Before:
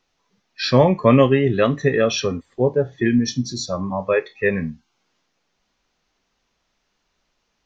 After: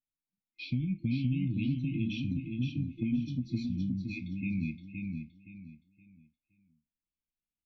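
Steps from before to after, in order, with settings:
noise gate with hold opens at −38 dBFS
brick-wall band-stop 340–2,100 Hz
dynamic equaliser 430 Hz, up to −5 dB, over −30 dBFS, Q 1.1
downward compressor, threshold −24 dBFS, peak gain reduction 12 dB
high-frequency loss of the air 480 metres
on a send: repeating echo 519 ms, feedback 29%, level −4.5 dB
on the sum: level −4 dB

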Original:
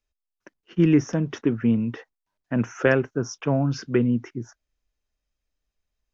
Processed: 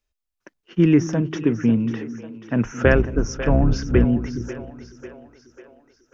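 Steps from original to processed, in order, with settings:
0:02.64–0:04.05: sub-octave generator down 2 octaves, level +3 dB
echo with a time of its own for lows and highs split 360 Hz, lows 218 ms, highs 545 ms, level −12.5 dB
level +2.5 dB

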